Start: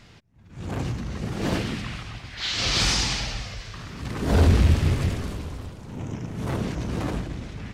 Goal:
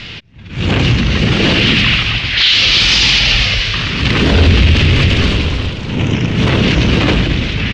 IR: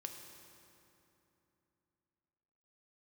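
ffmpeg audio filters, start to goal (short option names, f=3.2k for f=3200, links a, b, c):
-af "firequalizer=gain_entry='entry(510,0);entry(730,-4);entry(2800,13);entry(11000,-24)':delay=0.05:min_phase=1,alimiter=level_in=19dB:limit=-1dB:release=50:level=0:latency=1,volume=-1dB"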